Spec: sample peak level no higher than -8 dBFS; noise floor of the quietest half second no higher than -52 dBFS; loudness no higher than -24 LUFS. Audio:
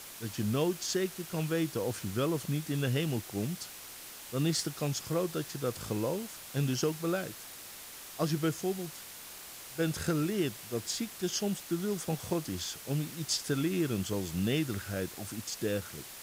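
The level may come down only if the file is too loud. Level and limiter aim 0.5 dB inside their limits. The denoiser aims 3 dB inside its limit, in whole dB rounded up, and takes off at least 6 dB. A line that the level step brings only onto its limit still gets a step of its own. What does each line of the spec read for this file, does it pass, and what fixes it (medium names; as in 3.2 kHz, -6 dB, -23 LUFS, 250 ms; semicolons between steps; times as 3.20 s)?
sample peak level -17.5 dBFS: pass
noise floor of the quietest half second -47 dBFS: fail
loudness -33.5 LUFS: pass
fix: noise reduction 8 dB, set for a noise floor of -47 dBFS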